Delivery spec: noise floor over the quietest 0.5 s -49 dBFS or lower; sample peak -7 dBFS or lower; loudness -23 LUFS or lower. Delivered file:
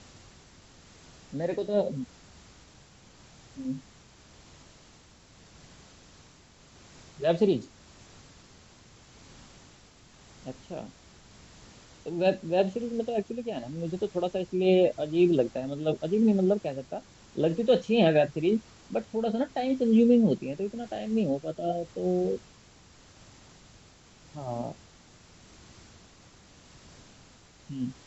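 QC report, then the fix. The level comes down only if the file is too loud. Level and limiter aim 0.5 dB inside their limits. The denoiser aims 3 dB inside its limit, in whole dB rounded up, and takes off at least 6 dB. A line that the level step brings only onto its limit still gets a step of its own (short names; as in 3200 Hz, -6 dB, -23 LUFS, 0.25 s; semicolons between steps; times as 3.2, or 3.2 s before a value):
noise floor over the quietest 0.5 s -56 dBFS: OK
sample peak -9.5 dBFS: OK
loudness -28.0 LUFS: OK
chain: none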